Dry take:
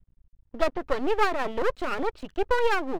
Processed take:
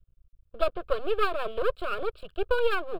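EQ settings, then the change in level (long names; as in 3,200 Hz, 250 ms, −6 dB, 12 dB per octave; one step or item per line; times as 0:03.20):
phaser with its sweep stopped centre 1,300 Hz, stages 8
0.0 dB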